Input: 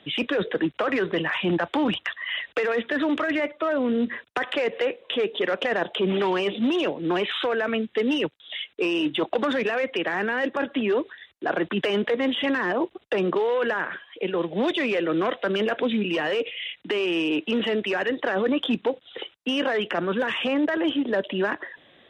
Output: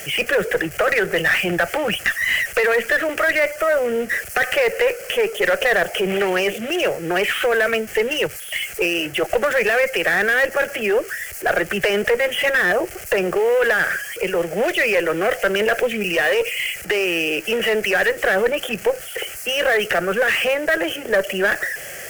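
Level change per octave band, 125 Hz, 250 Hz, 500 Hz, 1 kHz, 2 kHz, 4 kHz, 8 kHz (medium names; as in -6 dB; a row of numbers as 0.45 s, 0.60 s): +1.5 dB, -3.0 dB, +6.0 dB, +4.5 dB, +10.0 dB, +4.5 dB, no reading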